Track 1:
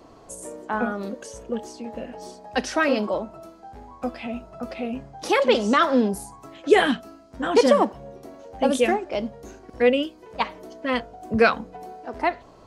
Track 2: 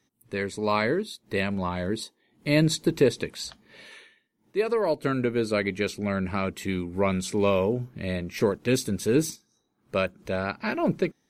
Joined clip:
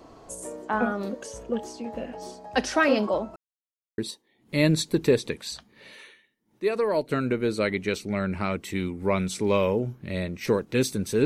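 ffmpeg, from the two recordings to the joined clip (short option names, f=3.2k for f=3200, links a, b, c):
-filter_complex "[0:a]apad=whole_dur=11.25,atrim=end=11.25,asplit=2[a][b];[a]atrim=end=3.36,asetpts=PTS-STARTPTS,afade=t=out:st=3.356:d=0.004:c=hsin[c];[b]atrim=start=3.36:end=3.98,asetpts=PTS-STARTPTS,volume=0[d];[1:a]atrim=start=1.91:end=9.18,asetpts=PTS-STARTPTS,afade=t=in:d=0.004:c=hsin[e];[c][d][e]concat=n=3:v=0:a=1"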